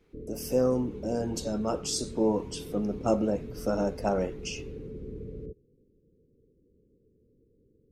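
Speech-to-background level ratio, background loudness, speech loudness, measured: 11.5 dB, −41.5 LKFS, −30.0 LKFS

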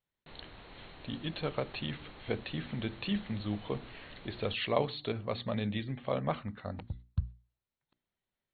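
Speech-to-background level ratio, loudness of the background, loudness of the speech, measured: 15.5 dB, −52.5 LKFS, −37.0 LKFS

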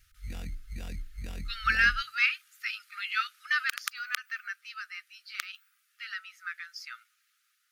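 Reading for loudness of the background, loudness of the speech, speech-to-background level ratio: −42.5 LKFS, −31.0 LKFS, 11.5 dB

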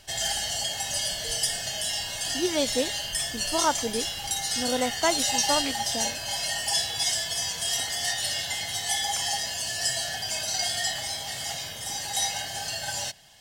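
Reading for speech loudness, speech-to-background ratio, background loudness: −30.0 LKFS, −3.0 dB, −27.0 LKFS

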